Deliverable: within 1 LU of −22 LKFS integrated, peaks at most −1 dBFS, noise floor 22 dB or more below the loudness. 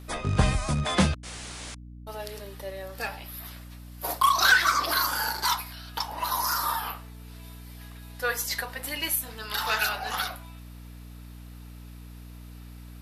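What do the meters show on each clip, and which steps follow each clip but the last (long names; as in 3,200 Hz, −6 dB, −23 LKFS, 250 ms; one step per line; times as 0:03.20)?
mains hum 60 Hz; hum harmonics up to 300 Hz; level of the hum −41 dBFS; integrated loudness −26.5 LKFS; sample peak −9.0 dBFS; target loudness −22.0 LKFS
→ hum removal 60 Hz, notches 5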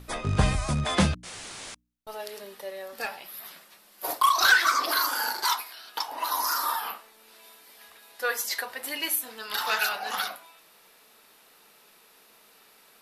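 mains hum none found; integrated loudness −26.5 LKFS; sample peak −9.5 dBFS; target loudness −22.0 LKFS
→ level +4.5 dB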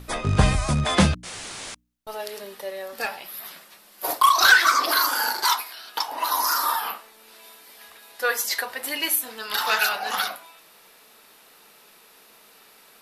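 integrated loudness −22.0 LKFS; sample peak −5.0 dBFS; background noise floor −53 dBFS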